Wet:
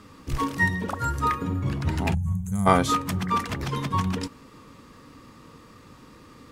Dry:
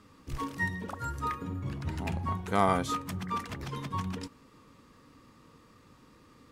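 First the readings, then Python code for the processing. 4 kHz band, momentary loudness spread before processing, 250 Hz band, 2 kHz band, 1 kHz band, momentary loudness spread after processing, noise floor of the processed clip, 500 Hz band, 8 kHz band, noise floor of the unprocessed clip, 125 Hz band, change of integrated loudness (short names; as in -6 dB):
+8.5 dB, 11 LU, +8.5 dB, +8.5 dB, +7.0 dB, 9 LU, -50 dBFS, +5.5 dB, +9.0 dB, -59 dBFS, +9.0 dB, +7.5 dB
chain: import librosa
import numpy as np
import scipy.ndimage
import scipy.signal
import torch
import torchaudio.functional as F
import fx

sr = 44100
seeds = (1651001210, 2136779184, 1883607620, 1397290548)

y = fx.spec_box(x, sr, start_s=2.14, length_s=0.52, low_hz=210.0, high_hz=6100.0, gain_db=-26)
y = y * librosa.db_to_amplitude(9.0)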